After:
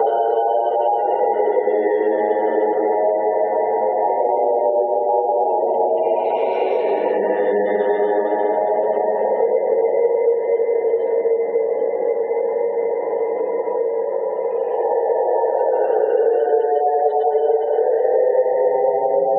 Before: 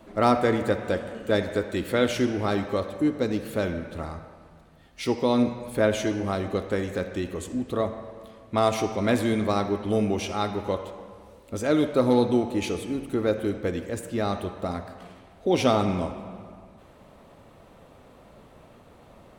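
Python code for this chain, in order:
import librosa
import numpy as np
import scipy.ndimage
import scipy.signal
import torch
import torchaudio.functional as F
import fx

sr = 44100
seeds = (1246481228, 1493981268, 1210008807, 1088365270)

p1 = fx.band_invert(x, sr, width_hz=1000)
p2 = fx.tilt_eq(p1, sr, slope=-2.0)
p3 = fx.over_compress(p2, sr, threshold_db=-27.0, ratio=-1.0)
p4 = p2 + F.gain(torch.from_numpy(p3), 2.0).numpy()
p5 = fx.paulstretch(p4, sr, seeds[0], factor=6.7, window_s=0.25, from_s=9.25)
p6 = fx.air_absorb(p5, sr, metres=270.0)
p7 = p6 + 10.0 ** (-21.0 / 20.0) * np.pad(p6, (int(138 * sr / 1000.0), 0))[:len(p6)]
p8 = fx.spec_gate(p7, sr, threshold_db=-30, keep='strong')
p9 = fx.highpass_res(p8, sr, hz=450.0, q=5.5)
p10 = fx.band_squash(p9, sr, depth_pct=100)
y = F.gain(torch.from_numpy(p10), -6.0).numpy()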